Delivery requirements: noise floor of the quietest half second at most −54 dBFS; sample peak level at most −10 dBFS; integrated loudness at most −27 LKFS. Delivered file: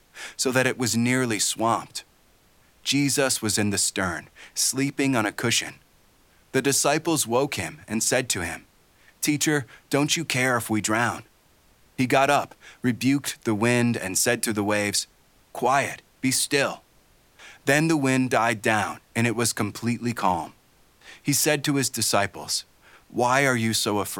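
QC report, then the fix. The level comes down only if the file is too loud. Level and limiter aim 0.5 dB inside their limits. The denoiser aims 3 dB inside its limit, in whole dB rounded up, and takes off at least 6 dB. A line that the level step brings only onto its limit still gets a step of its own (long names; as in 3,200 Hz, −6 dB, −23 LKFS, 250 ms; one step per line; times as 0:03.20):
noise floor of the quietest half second −59 dBFS: in spec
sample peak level −6.0 dBFS: out of spec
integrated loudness −23.5 LKFS: out of spec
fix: level −4 dB
brickwall limiter −10.5 dBFS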